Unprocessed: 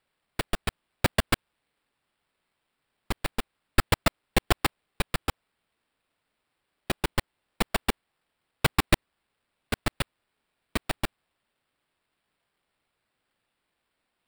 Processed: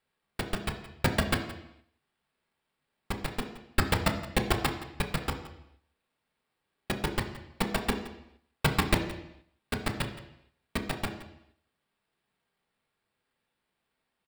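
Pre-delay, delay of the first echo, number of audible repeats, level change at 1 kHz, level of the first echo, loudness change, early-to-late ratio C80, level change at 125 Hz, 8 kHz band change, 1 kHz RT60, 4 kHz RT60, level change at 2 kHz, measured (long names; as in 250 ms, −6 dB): 3 ms, 170 ms, 1, −2.0 dB, −16.5 dB, −2.0 dB, 10.5 dB, −0.5 dB, −3.5 dB, 0.80 s, 0.75 s, −2.0 dB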